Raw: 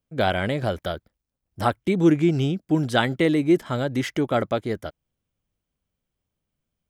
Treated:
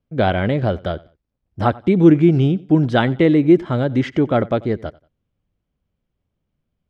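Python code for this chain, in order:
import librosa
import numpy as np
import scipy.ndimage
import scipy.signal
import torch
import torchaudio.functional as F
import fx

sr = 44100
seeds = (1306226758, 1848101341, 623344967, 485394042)

p1 = scipy.signal.sosfilt(scipy.signal.butter(2, 3900.0, 'lowpass', fs=sr, output='sos'), x)
p2 = fx.tilt_shelf(p1, sr, db=3.5, hz=640.0)
p3 = p2 + fx.echo_feedback(p2, sr, ms=91, feedback_pct=29, wet_db=-22.5, dry=0)
y = F.gain(torch.from_numpy(p3), 4.5).numpy()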